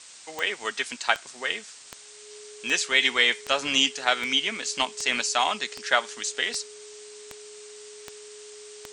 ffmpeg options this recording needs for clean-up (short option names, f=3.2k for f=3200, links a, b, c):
-af "adeclick=t=4,bandreject=f=420:w=30,afftdn=nr=25:nf=-46"